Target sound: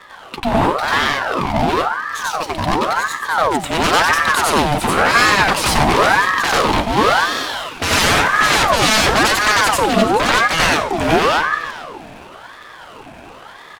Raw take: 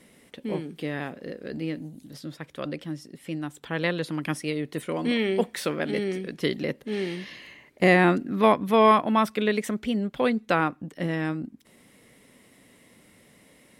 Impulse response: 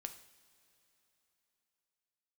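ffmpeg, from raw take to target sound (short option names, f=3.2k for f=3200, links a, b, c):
-filter_complex "[0:a]highshelf=f=10k:g=10,bandreject=f=60:t=h:w=6,bandreject=f=120:t=h:w=6,bandreject=f=180:t=h:w=6,aeval=exprs='0.473*sin(PI/2*8.91*val(0)/0.473)':c=same,adynamicsmooth=sensitivity=8:basefreq=560,aecho=1:1:430:0.168,asplit=2[a][b];[1:a]atrim=start_sample=2205,adelay=92[c];[b][c]afir=irnorm=-1:irlink=0,volume=7dB[d];[a][d]amix=inputs=2:normalize=0,aeval=exprs='val(0)*sin(2*PI*960*n/s+960*0.55/0.95*sin(2*PI*0.95*n/s))':c=same,volume=-5.5dB"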